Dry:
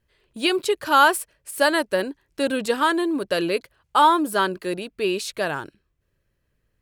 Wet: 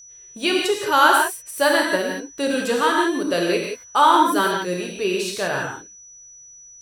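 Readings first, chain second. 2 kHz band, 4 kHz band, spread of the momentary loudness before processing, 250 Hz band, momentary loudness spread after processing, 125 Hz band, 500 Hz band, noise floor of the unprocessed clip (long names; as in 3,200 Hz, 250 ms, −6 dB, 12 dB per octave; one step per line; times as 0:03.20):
+3.0 dB, +2.5 dB, 12 LU, +1.5 dB, 11 LU, +3.5 dB, +2.0 dB, −73 dBFS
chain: reverb whose tail is shaped and stops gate 200 ms flat, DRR −1 dB
steady tone 5,900 Hz −41 dBFS
level −1 dB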